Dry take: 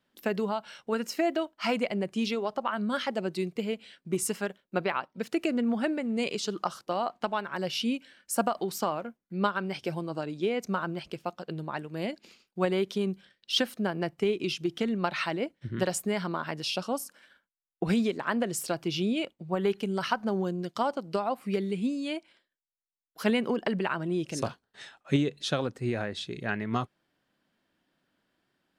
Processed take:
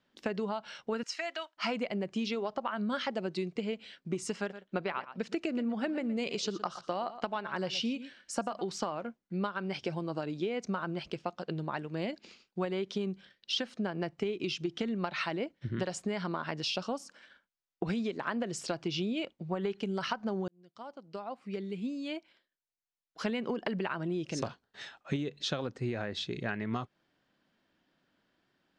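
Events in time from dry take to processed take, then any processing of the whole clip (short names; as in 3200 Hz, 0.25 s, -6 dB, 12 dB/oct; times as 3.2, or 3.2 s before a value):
1.03–1.57 HPF 1200 Hz
4.38–8.62 echo 0.118 s -16 dB
20.48–23.53 fade in
whole clip: LPF 6800 Hz 24 dB/oct; compressor, threshold -31 dBFS; gain +1 dB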